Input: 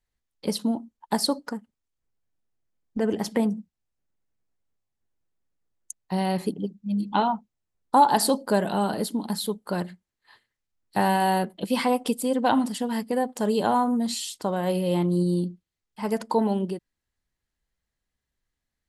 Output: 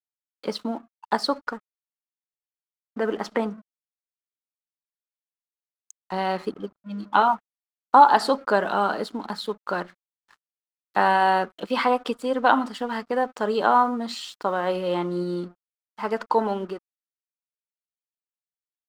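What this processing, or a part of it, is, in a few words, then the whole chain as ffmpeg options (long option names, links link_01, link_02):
pocket radio on a weak battery: -af "highpass=320,lowpass=4200,aeval=exprs='sgn(val(0))*max(abs(val(0))-0.00224,0)':channel_layout=same,equalizer=frequency=1300:width_type=o:width=0.57:gain=11,volume=2dB"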